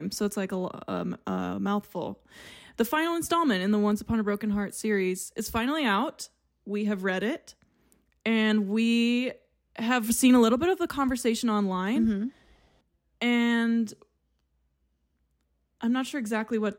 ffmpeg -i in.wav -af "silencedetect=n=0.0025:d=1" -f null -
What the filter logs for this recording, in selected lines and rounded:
silence_start: 14.03
silence_end: 15.81 | silence_duration: 1.78